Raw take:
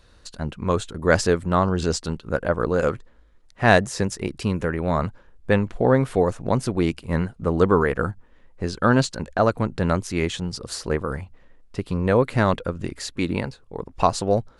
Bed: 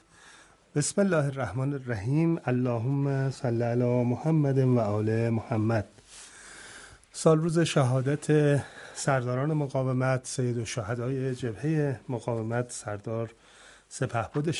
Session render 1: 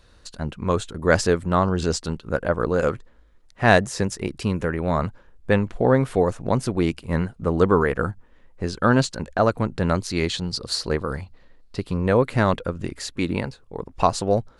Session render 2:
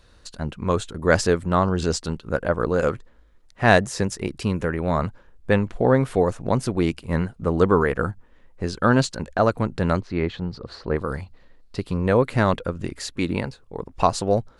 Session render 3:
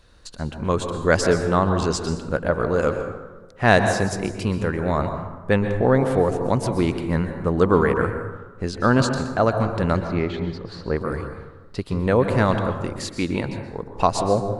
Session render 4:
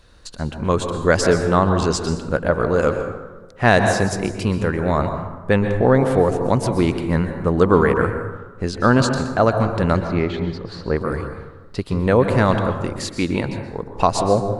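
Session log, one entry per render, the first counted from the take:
9.95–11.84 s: peaking EQ 4.3 kHz +11 dB 0.4 oct
10.00–10.96 s: low-pass 1.8 kHz
plate-style reverb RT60 1.2 s, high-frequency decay 0.45×, pre-delay 110 ms, DRR 6.5 dB
trim +3 dB; peak limiter -2 dBFS, peak gain reduction 3 dB

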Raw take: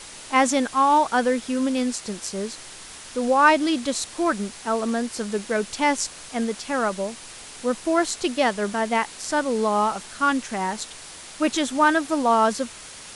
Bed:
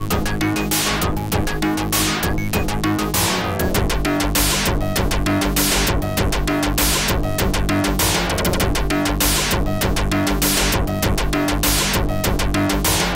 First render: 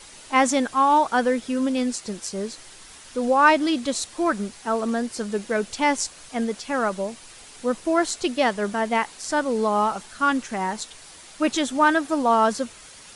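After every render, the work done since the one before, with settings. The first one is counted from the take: noise reduction 6 dB, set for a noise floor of -41 dBFS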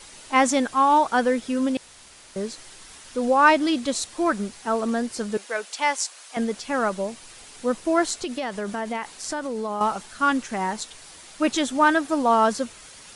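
1.77–2.36 s: room tone; 5.37–6.37 s: high-pass 650 Hz; 8.17–9.81 s: compression 10:1, threshold -24 dBFS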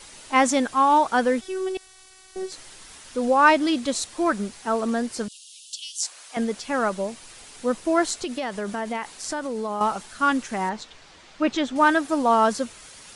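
1.41–2.52 s: robot voice 377 Hz; 5.28–6.03 s: steep high-pass 2.8 kHz 96 dB/octave; 10.69–11.76 s: distance through air 130 m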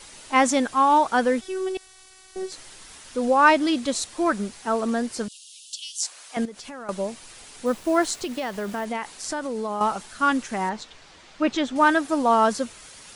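6.45–6.89 s: compression 5:1, threshold -36 dBFS; 7.66–8.85 s: send-on-delta sampling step -41.5 dBFS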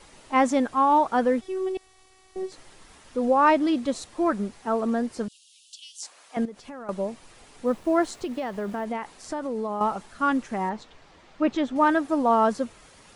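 treble shelf 2.2 kHz -12 dB; band-stop 1.5 kHz, Q 25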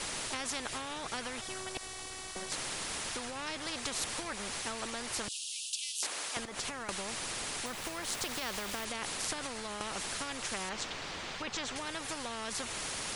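compression, threshold -27 dBFS, peak gain reduction 11.5 dB; spectrum-flattening compressor 4:1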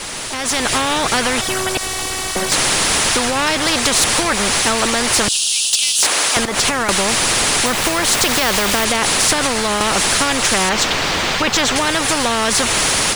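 waveshaping leveller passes 3; level rider gain up to 12 dB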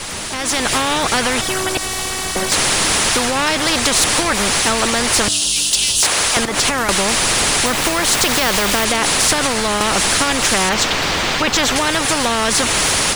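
add bed -15.5 dB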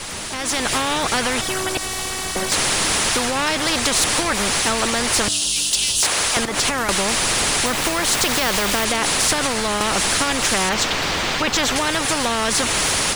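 trim -3.5 dB

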